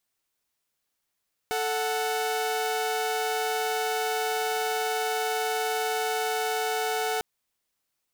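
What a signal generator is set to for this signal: chord A4/F#5 saw, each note -26 dBFS 5.70 s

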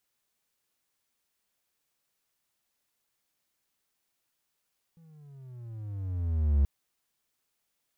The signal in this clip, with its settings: gliding synth tone triangle, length 1.68 s, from 168 Hz, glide -15.5 st, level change +34.5 dB, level -17 dB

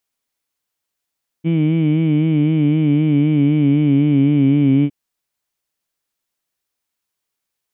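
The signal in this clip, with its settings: formant-synthesis vowel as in heed, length 3.46 s, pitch 160 Hz, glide -2.5 st, vibrato 3.9 Hz, vibrato depth 0.75 st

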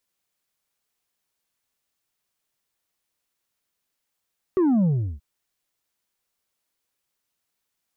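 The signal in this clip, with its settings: sub drop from 390 Hz, over 0.63 s, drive 4 dB, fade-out 0.36 s, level -17 dB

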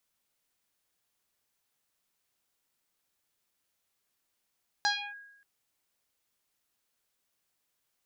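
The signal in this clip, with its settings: FM tone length 0.58 s, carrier 1.64 kHz, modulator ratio 0.5, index 4.8, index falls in 0.29 s linear, decay 0.89 s, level -23 dB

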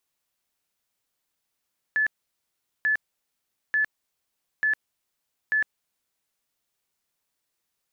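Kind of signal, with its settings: tone bursts 1.73 kHz, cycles 183, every 0.89 s, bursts 5, -19.5 dBFS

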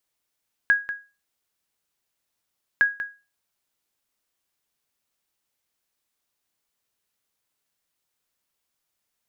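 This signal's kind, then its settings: sonar ping 1.65 kHz, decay 0.30 s, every 2.11 s, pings 2, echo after 0.19 s, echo -11.5 dB -10.5 dBFS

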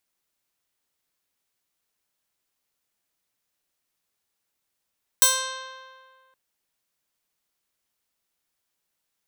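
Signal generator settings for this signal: plucked string C5, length 1.12 s, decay 1.88 s, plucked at 0.23, bright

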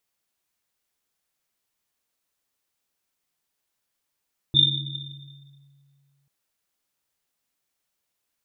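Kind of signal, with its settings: Risset drum length 1.74 s, pitch 140 Hz, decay 2.43 s, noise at 3.6 kHz, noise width 120 Hz, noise 65%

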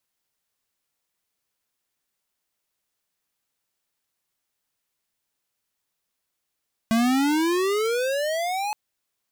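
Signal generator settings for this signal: gliding synth tone square, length 1.82 s, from 221 Hz, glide +23.5 st, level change -7.5 dB, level -19.5 dB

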